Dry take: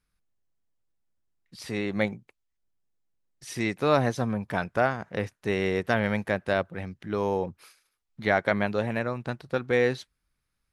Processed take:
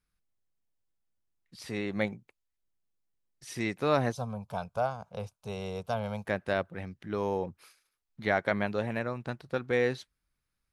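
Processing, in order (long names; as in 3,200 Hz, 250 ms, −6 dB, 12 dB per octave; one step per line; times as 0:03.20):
0:04.12–0:06.26: phaser with its sweep stopped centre 770 Hz, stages 4
level −4 dB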